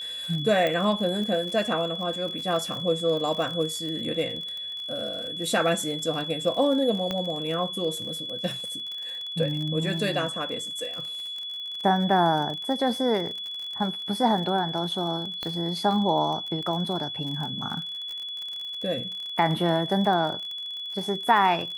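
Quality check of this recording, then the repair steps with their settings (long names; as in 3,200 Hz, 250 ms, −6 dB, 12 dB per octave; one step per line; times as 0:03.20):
surface crackle 47 per second −32 dBFS
whistle 3,400 Hz −32 dBFS
0:00.67: click −14 dBFS
0:07.11: click −15 dBFS
0:15.43: click −17 dBFS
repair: click removal
notch filter 3,400 Hz, Q 30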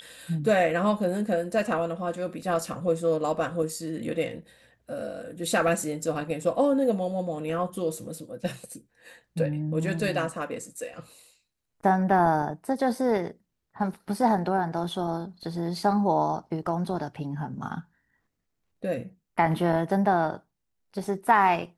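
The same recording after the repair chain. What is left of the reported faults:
0:15.43: click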